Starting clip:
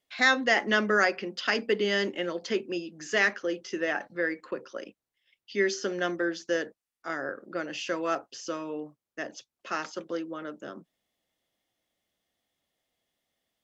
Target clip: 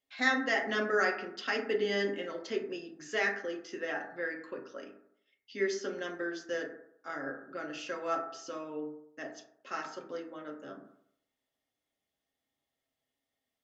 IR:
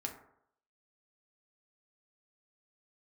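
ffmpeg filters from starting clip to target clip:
-filter_complex "[1:a]atrim=start_sample=2205[s0];[0:a][s0]afir=irnorm=-1:irlink=0,volume=0.531"

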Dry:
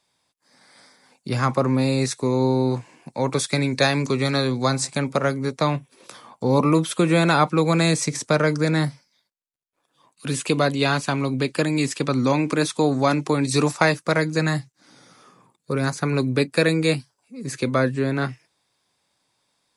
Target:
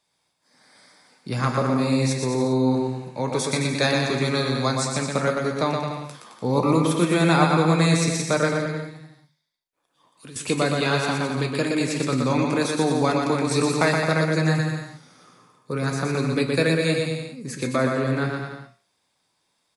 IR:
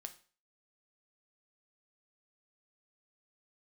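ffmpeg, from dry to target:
-filter_complex "[0:a]asettb=1/sr,asplit=3[s0][s1][s2];[s0]atrim=end=8.534[s3];[s1]atrim=start=8.53:end=10.36,asetpts=PTS-STARTPTS,afade=t=in:d=0.004:c=qsin,afade=t=out:st=1.826:d=0.004:c=qsin,acompressor=threshold=0.00891:ratio=3[s4];[s2]atrim=start=10.356[s5];[s3][s4]acrossfade=d=0.004:c1=hsin:c2=qsin[s6];[s6][s5]acrossfade=d=0.004:c1=qsin:c2=hsin,aecho=1:1:120|216|292.8|354.2|403.4:0.631|0.398|0.251|0.158|0.1[s7];[1:a]atrim=start_sample=2205[s8];[s7][s8]afir=irnorm=-1:irlink=0,volume=1.26"

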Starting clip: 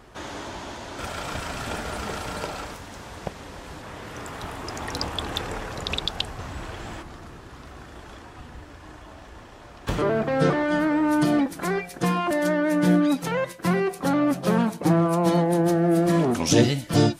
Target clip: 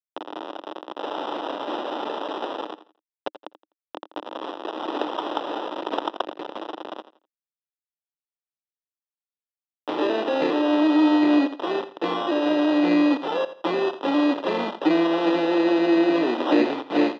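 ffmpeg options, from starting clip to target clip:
-filter_complex "[0:a]acrossover=split=380|3000[s0][s1][s2];[s1]acompressor=threshold=0.0447:ratio=5[s3];[s0][s3][s2]amix=inputs=3:normalize=0,acrusher=bits=4:mix=0:aa=0.000001,acompressor=mode=upward:threshold=0.0447:ratio=2.5,acrusher=samples=20:mix=1:aa=0.000001,highpass=f=300:w=0.5412,highpass=f=300:w=1.3066,equalizer=f=310:t=q:w=4:g=8,equalizer=f=560:t=q:w=4:g=4,equalizer=f=900:t=q:w=4:g=4,equalizer=f=1600:t=q:w=4:g=-5,equalizer=f=3600:t=q:w=4:g=3,lowpass=f=3800:w=0.5412,lowpass=f=3800:w=1.3066,aecho=1:1:84|168|252:0.2|0.0559|0.0156"

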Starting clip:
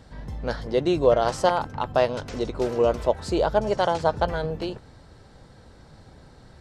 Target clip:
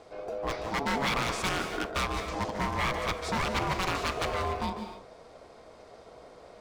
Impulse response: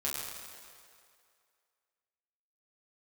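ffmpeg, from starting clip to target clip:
-filter_complex "[0:a]aeval=exprs='val(0)*sin(2*PI*560*n/s)':c=same,aeval=exprs='0.0708*(abs(mod(val(0)/0.0708+3,4)-2)-1)':c=same,asplit=2[s0][s1];[1:a]atrim=start_sample=2205,atrim=end_sample=6615,adelay=147[s2];[s1][s2]afir=irnorm=-1:irlink=0,volume=0.316[s3];[s0][s3]amix=inputs=2:normalize=0"

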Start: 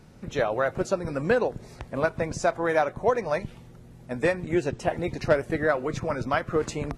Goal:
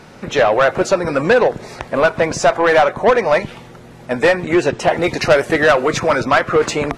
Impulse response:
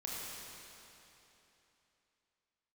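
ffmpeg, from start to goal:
-filter_complex "[0:a]asetnsamples=n=441:p=0,asendcmd='5.02 lowpass f 7800;6.2 lowpass f 3500',asplit=2[s0][s1];[s1]highpass=f=720:p=1,volume=7.94,asoftclip=type=tanh:threshold=0.316[s2];[s0][s2]amix=inputs=2:normalize=0,lowpass=f=3300:p=1,volume=0.501,volume=2.24"

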